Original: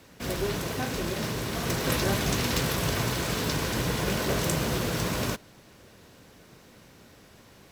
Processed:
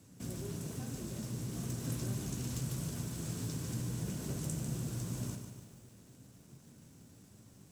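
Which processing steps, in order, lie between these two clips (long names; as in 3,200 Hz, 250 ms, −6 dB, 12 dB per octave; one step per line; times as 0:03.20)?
octave-band graphic EQ 125/250/500/1,000/2,000/4,000/8,000 Hz +11/+6/−4/−4/−7/−5/+10 dB
downward compressor 2 to 1, threshold −32 dBFS, peak gain reduction 9 dB
flanger 0.27 Hz, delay 9.8 ms, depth 8.4 ms, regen −49%
feedback echo at a low word length 147 ms, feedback 55%, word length 9 bits, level −7 dB
level −6 dB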